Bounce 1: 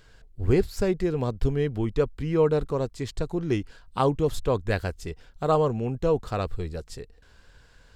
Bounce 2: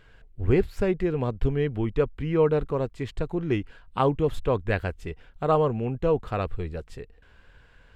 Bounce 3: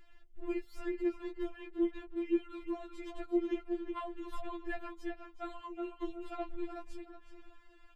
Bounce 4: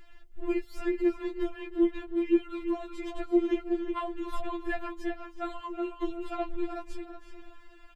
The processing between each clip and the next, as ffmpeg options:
-af "highshelf=f=3.7k:t=q:w=1.5:g=-9"
-filter_complex "[0:a]acrossover=split=220|2700[a][b][c];[a]acompressor=threshold=-36dB:ratio=4[d];[b]acompressor=threshold=-31dB:ratio=4[e];[c]acompressor=threshold=-54dB:ratio=4[f];[d][e][f]amix=inputs=3:normalize=0,asplit=2[g][h];[h]adelay=370,lowpass=f=2.8k:p=1,volume=-5.5dB,asplit=2[i][j];[j]adelay=370,lowpass=f=2.8k:p=1,volume=0.31,asplit=2[k][l];[l]adelay=370,lowpass=f=2.8k:p=1,volume=0.31,asplit=2[m][n];[n]adelay=370,lowpass=f=2.8k:p=1,volume=0.31[o];[g][i][k][m][o]amix=inputs=5:normalize=0,afftfilt=real='re*4*eq(mod(b,16),0)':imag='im*4*eq(mod(b,16),0)':win_size=2048:overlap=0.75,volume=-4dB"
-af "aecho=1:1:320:0.15,volume=7dB"

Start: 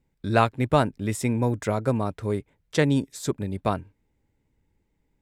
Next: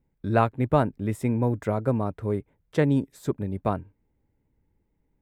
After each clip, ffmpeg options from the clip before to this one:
-af "equalizer=f=5.9k:w=0.46:g=-14"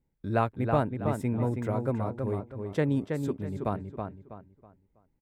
-filter_complex "[0:a]asplit=2[a][b];[b]adelay=324,lowpass=f=3.6k:p=1,volume=-5dB,asplit=2[c][d];[d]adelay=324,lowpass=f=3.6k:p=1,volume=0.32,asplit=2[e][f];[f]adelay=324,lowpass=f=3.6k:p=1,volume=0.32,asplit=2[g][h];[h]adelay=324,lowpass=f=3.6k:p=1,volume=0.32[i];[a][c][e][g][i]amix=inputs=5:normalize=0,volume=-5dB"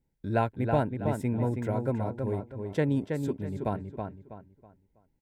-af "asuperstop=centerf=1200:order=8:qfactor=5.7"

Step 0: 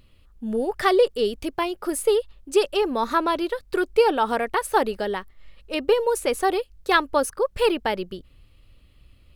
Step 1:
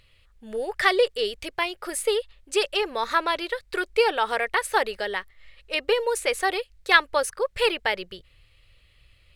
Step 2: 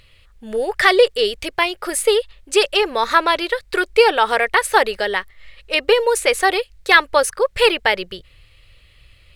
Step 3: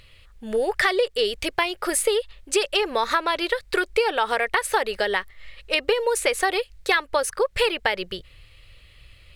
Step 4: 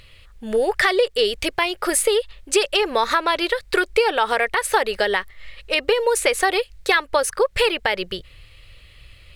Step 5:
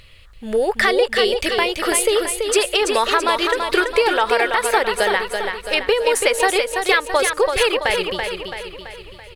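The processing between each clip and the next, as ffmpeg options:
-af "equalizer=f=125:t=o:w=1:g=3,equalizer=f=250:t=o:w=1:g=-12,equalizer=f=500:t=o:w=1:g=5,equalizer=f=2k:t=o:w=1:g=11,equalizer=f=4k:t=o:w=1:g=6,equalizer=f=8k:t=o:w=1:g=6,volume=-5.5dB"
-af "apsyclip=9.5dB,volume=-1.5dB"
-af "acompressor=threshold=-18dB:ratio=6"
-af "alimiter=level_in=8.5dB:limit=-1dB:release=50:level=0:latency=1,volume=-5dB"
-af "aecho=1:1:333|666|999|1332|1665|1998:0.531|0.271|0.138|0.0704|0.0359|0.0183,volume=1dB"

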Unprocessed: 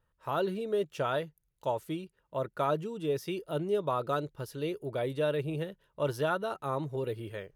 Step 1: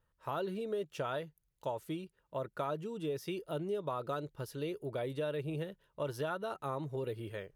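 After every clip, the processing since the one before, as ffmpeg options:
-af "acompressor=threshold=-32dB:ratio=3,volume=-2dB"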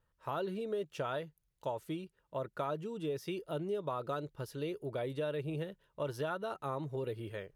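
-af "highshelf=f=9.3k:g=-4"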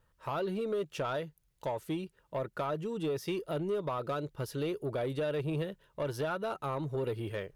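-filter_complex "[0:a]asplit=2[a][b];[b]alimiter=level_in=7.5dB:limit=-24dB:level=0:latency=1:release=486,volume=-7.5dB,volume=2dB[c];[a][c]amix=inputs=2:normalize=0,asoftclip=type=tanh:threshold=-26dB"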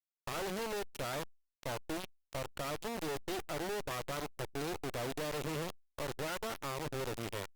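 -af "acrusher=bits=3:dc=4:mix=0:aa=0.000001,volume=-1.5dB" -ar 48000 -c:a libopus -b:a 48k

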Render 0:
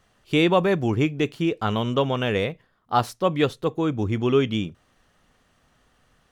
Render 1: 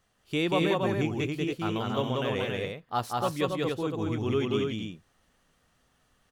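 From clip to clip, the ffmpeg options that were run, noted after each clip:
-af "highshelf=f=6.3k:g=6.5,aecho=1:1:186.6|277:0.794|0.631,volume=-9dB"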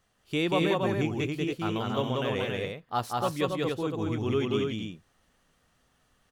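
-af anull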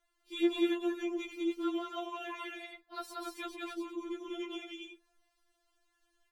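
-af "afftfilt=real='re*4*eq(mod(b,16),0)':imag='im*4*eq(mod(b,16),0)':win_size=2048:overlap=0.75,volume=-5dB"

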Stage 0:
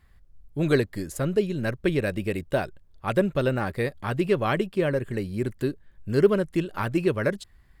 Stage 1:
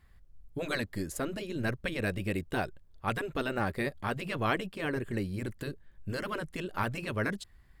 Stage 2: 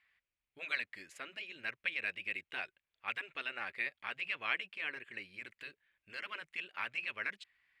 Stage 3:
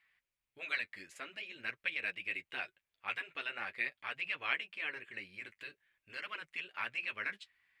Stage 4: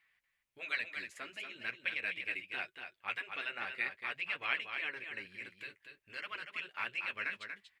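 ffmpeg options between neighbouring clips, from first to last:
-af "afftfilt=real='re*lt(hypot(re,im),0.355)':imag='im*lt(hypot(re,im),0.355)':win_size=1024:overlap=0.75,volume=-2.5dB"
-af "bandpass=f=2.4k:t=q:w=3.4:csg=0,volume=5dB"
-af "flanger=delay=6:depth=5.3:regen=-35:speed=0.47:shape=triangular,volume=4dB"
-af "aecho=1:1:237:0.447"

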